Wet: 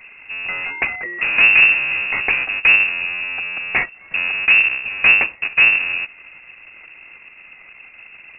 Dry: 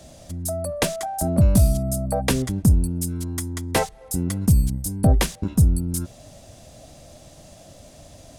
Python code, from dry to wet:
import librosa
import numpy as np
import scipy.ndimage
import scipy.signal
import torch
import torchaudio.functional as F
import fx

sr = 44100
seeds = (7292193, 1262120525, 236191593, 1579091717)

y = fx.halfwave_hold(x, sr)
y = fx.freq_invert(y, sr, carrier_hz=2700)
y = F.gain(torch.from_numpy(y), -2.0).numpy()